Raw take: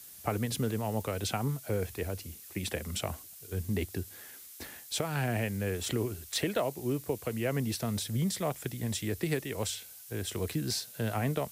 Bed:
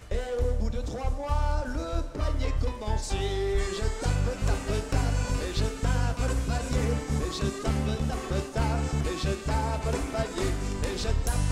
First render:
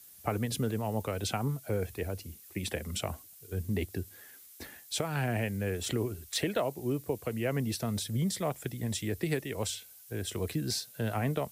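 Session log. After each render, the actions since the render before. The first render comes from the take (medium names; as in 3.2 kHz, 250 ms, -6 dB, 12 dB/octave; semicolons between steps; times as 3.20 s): noise reduction 6 dB, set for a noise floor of -50 dBFS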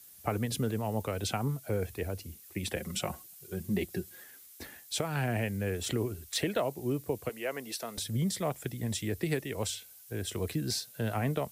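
2.76–4.24 s: comb 5.5 ms; 7.29–7.98 s: high-pass 460 Hz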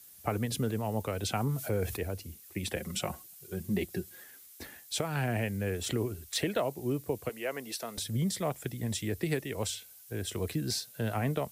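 1.35–1.97 s: level flattener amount 50%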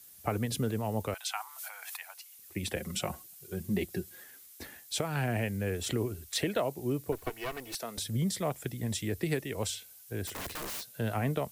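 1.14–2.39 s: steep high-pass 800 Hz 48 dB/octave; 7.12–7.75 s: comb filter that takes the minimum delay 2.7 ms; 10.27–10.84 s: integer overflow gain 33.5 dB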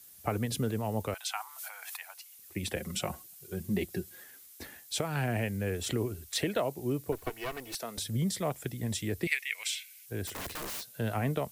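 9.27–10.06 s: resonant high-pass 2.2 kHz, resonance Q 5.7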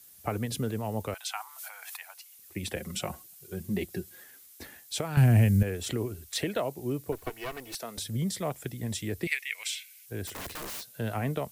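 5.17–5.63 s: tone controls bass +15 dB, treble +7 dB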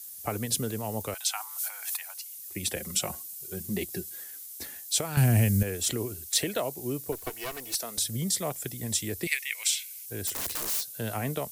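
tone controls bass -2 dB, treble +11 dB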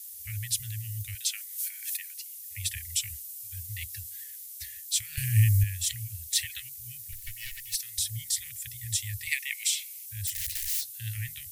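Chebyshev band-stop 110–1800 Hz, order 5; bass shelf 120 Hz +7 dB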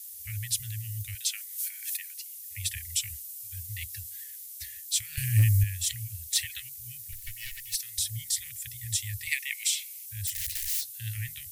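hard clipper -14.5 dBFS, distortion -32 dB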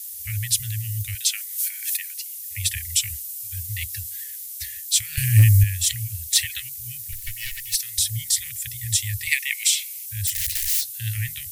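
trim +8 dB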